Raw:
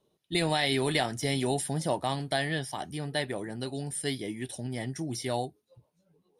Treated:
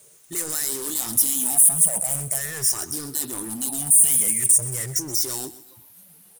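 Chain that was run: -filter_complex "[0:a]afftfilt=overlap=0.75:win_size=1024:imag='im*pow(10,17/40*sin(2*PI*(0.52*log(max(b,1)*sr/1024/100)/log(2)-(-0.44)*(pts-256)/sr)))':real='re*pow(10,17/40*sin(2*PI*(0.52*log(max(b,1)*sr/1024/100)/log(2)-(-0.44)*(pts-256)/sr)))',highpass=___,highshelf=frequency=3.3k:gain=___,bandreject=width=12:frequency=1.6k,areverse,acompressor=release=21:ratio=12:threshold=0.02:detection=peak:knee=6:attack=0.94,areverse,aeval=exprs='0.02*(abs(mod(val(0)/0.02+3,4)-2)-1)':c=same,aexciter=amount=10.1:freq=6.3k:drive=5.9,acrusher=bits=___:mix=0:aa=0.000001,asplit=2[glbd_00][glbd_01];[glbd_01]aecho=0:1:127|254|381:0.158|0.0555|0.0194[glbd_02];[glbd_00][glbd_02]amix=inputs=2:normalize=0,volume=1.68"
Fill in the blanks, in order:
84, 8, 9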